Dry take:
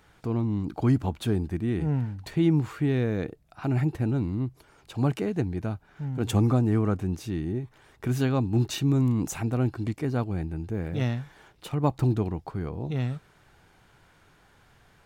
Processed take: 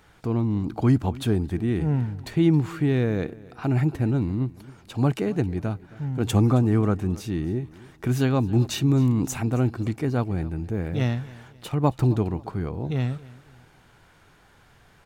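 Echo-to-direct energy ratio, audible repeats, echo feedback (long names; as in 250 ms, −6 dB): −20.0 dB, 2, 36%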